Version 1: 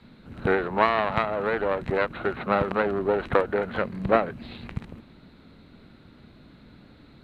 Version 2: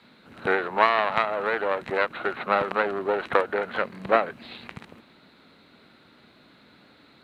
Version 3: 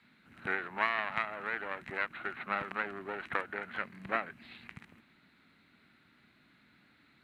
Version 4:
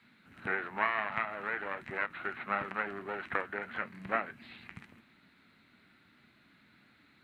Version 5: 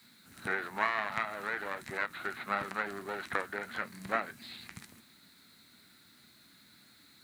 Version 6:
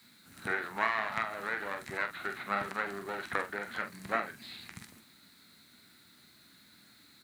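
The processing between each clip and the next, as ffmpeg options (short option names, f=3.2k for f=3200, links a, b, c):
-af "highpass=f=690:p=1,volume=3.5dB"
-af "equalizer=f=500:t=o:w=1:g=-11,equalizer=f=1k:t=o:w=1:g=-4,equalizer=f=2k:t=o:w=1:g=5,equalizer=f=4k:t=o:w=1:g=-6,volume=-8dB"
-filter_complex "[0:a]flanger=delay=8.2:depth=2.7:regen=-65:speed=1.6:shape=sinusoidal,acrossover=split=2700[a][b];[b]acompressor=threshold=-58dB:ratio=4:attack=1:release=60[c];[a][c]amix=inputs=2:normalize=0,volume=5.5dB"
-af "aexciter=amount=7.9:drive=4.6:freq=4k"
-filter_complex "[0:a]asplit=2[a][b];[b]adelay=45,volume=-9dB[c];[a][c]amix=inputs=2:normalize=0"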